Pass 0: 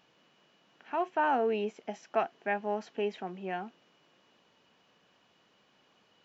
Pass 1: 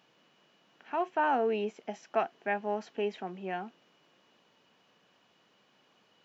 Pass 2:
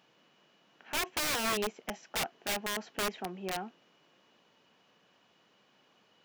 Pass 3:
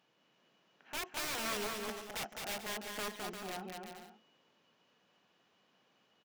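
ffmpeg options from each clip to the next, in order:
ffmpeg -i in.wav -af "highpass=96" out.wav
ffmpeg -i in.wav -af "aeval=exprs='(mod(21.1*val(0)+1,2)-1)/21.1':channel_layout=same" out.wav
ffmpeg -i in.wav -af "aecho=1:1:210|346.5|435.2|492.9|530.4:0.631|0.398|0.251|0.158|0.1,volume=-7.5dB" out.wav

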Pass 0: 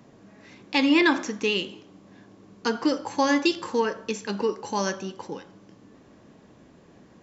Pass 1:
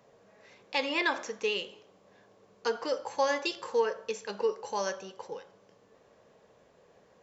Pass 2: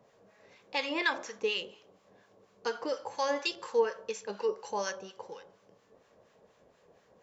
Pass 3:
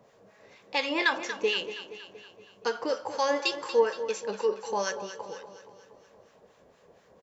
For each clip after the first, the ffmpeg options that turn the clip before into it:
ffmpeg -i in.wav -af "lowshelf=frequency=380:width_type=q:width=3:gain=-7,volume=-6.5dB" out.wav
ffmpeg -i in.wav -filter_complex "[0:a]acrossover=split=980[link_01][link_02];[link_01]aeval=exprs='val(0)*(1-0.7/2+0.7/2*cos(2*PI*4.2*n/s))':channel_layout=same[link_03];[link_02]aeval=exprs='val(0)*(1-0.7/2-0.7/2*cos(2*PI*4.2*n/s))':channel_layout=same[link_04];[link_03][link_04]amix=inputs=2:normalize=0,volume=1.5dB" out.wav
ffmpeg -i in.wav -af "aecho=1:1:235|470|705|940|1175|1410:0.251|0.133|0.0706|0.0374|0.0198|0.0105,volume=4dB" out.wav

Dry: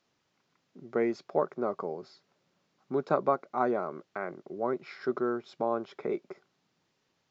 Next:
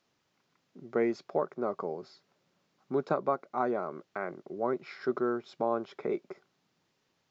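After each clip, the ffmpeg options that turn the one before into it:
ffmpeg -i in.wav -af "alimiter=limit=-16dB:level=0:latency=1:release=492" out.wav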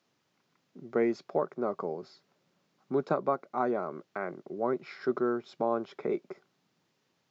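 ffmpeg -i in.wav -af "highpass=120,lowshelf=frequency=220:gain=4.5" out.wav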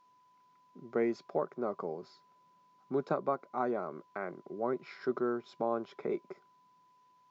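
ffmpeg -i in.wav -af "aeval=exprs='val(0)+0.001*sin(2*PI*1000*n/s)':channel_layout=same,volume=-3.5dB" out.wav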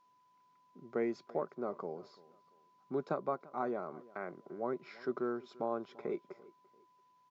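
ffmpeg -i in.wav -filter_complex "[0:a]asplit=2[link_01][link_02];[link_02]adelay=341,lowpass=frequency=3500:poles=1,volume=-21dB,asplit=2[link_03][link_04];[link_04]adelay=341,lowpass=frequency=3500:poles=1,volume=0.32[link_05];[link_01][link_03][link_05]amix=inputs=3:normalize=0,volume=-3.5dB" out.wav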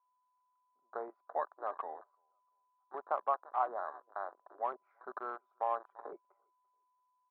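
ffmpeg -i in.wav -af "asuperpass=centerf=950:order=4:qfactor=1.6,afwtdn=0.00251,volume=7.5dB" out.wav

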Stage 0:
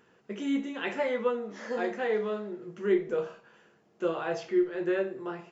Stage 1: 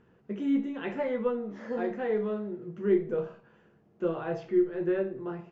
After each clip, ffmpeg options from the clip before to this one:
ffmpeg -i in.wav -af "aemphasis=mode=reproduction:type=riaa,volume=-3.5dB" out.wav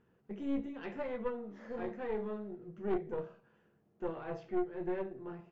ffmpeg -i in.wav -af "aeval=exprs='(tanh(14.1*val(0)+0.7)-tanh(0.7))/14.1':channel_layout=same,volume=-4.5dB" out.wav

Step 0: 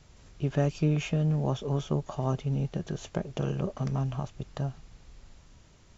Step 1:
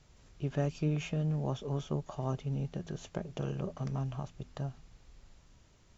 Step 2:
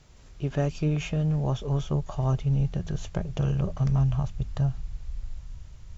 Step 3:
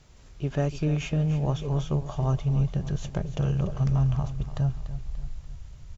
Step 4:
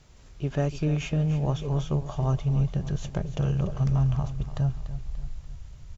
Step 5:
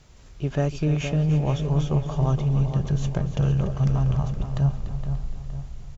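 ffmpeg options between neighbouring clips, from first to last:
ffmpeg -i in.wav -af "bandreject=frequency=82.74:width_type=h:width=4,bandreject=frequency=165.48:width_type=h:width=4,bandreject=frequency=248.22:width_type=h:width=4,volume=-5.5dB" out.wav
ffmpeg -i in.wav -af "asubboost=boost=8.5:cutoff=100,volume=6dB" out.wav
ffmpeg -i in.wav -af "aecho=1:1:291|582|873|1164|1455:0.224|0.103|0.0474|0.0218|0.01" out.wav
ffmpeg -i in.wav -af "asoftclip=type=hard:threshold=-15.5dB" out.wav
ffmpeg -i in.wav -filter_complex "[0:a]asplit=2[link_01][link_02];[link_02]adelay=466,lowpass=frequency=2500:poles=1,volume=-8dB,asplit=2[link_03][link_04];[link_04]adelay=466,lowpass=frequency=2500:poles=1,volume=0.48,asplit=2[link_05][link_06];[link_06]adelay=466,lowpass=frequency=2500:poles=1,volume=0.48,asplit=2[link_07][link_08];[link_08]adelay=466,lowpass=frequency=2500:poles=1,volume=0.48,asplit=2[link_09][link_10];[link_10]adelay=466,lowpass=frequency=2500:poles=1,volume=0.48,asplit=2[link_11][link_12];[link_12]adelay=466,lowpass=frequency=2500:poles=1,volume=0.48[link_13];[link_01][link_03][link_05][link_07][link_09][link_11][link_13]amix=inputs=7:normalize=0,volume=2.5dB" out.wav

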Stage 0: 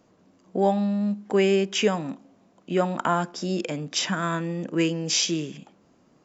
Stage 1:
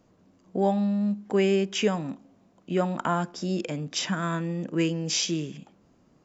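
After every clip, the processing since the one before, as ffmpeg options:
ffmpeg -i in.wav -af "lowshelf=frequency=120:gain=11,volume=-3.5dB" out.wav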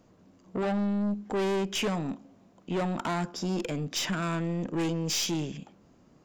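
ffmpeg -i in.wav -af "aeval=exprs='(tanh(25.1*val(0)+0.25)-tanh(0.25))/25.1':channel_layout=same,volume=2.5dB" out.wav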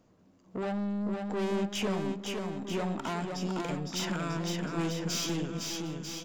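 ffmpeg -i in.wav -af "aecho=1:1:510|943.5|1312|1625|1891:0.631|0.398|0.251|0.158|0.1,volume=-4.5dB" out.wav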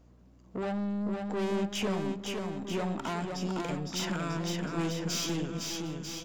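ffmpeg -i in.wav -af "aeval=exprs='val(0)+0.00126*(sin(2*PI*60*n/s)+sin(2*PI*2*60*n/s)/2+sin(2*PI*3*60*n/s)/3+sin(2*PI*4*60*n/s)/4+sin(2*PI*5*60*n/s)/5)':channel_layout=same" out.wav

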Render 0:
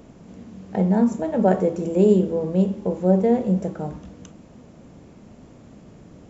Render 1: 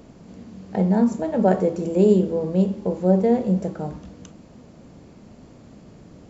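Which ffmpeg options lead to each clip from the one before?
ffmpeg -i in.wav -af "equalizer=frequency=4500:width_type=o:width=0.27:gain=6" out.wav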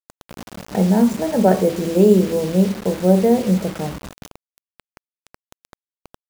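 ffmpeg -i in.wav -af "acrusher=bits=5:mix=0:aa=0.000001,volume=3.5dB" out.wav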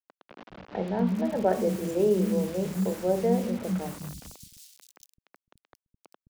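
ffmpeg -i in.wav -filter_complex "[0:a]acrossover=split=220|3900[link_01][link_02][link_03];[link_01]adelay=210[link_04];[link_03]adelay=780[link_05];[link_04][link_02][link_05]amix=inputs=3:normalize=0,volume=-8.5dB" out.wav

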